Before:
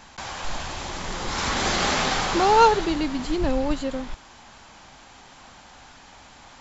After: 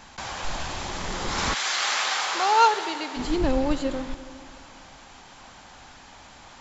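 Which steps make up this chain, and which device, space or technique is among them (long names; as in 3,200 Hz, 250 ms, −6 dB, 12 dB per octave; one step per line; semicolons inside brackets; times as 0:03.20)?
saturated reverb return (on a send at −11.5 dB: convolution reverb RT60 2.1 s, pre-delay 33 ms + soft clipping −17 dBFS, distortion −13 dB)
0:01.53–0:03.16: on the sum: high-pass filter 1,300 Hz → 530 Hz 12 dB per octave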